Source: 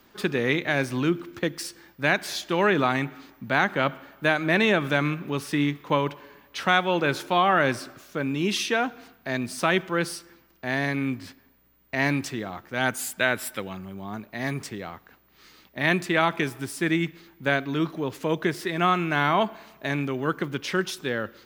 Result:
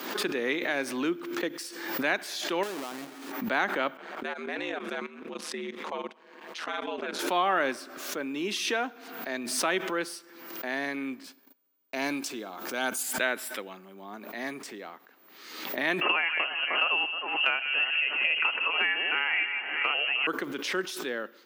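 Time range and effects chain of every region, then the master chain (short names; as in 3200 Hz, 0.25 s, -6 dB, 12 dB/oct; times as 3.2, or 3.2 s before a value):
2.63–3.32 half-waves squared off + compressor, threshold -28 dBFS
3.97–7.19 ring modulator 80 Hz + LPF 8900 Hz + level quantiser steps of 14 dB
11.24–13.03 notch 1900 Hz, Q 5.6 + gate -57 dBFS, range -50 dB + tone controls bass +1 dB, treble +6 dB
16.01–20.27 echo with dull and thin repeats by turns 0.154 s, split 1400 Hz, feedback 55%, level -8.5 dB + inverted band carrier 3000 Hz + three-band squash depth 100%
whole clip: HPF 250 Hz 24 dB/oct; backwards sustainer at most 51 dB/s; gain -5 dB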